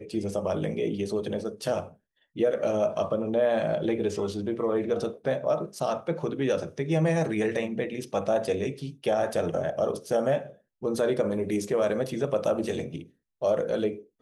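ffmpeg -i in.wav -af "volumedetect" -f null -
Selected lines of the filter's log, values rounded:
mean_volume: -27.8 dB
max_volume: -13.8 dB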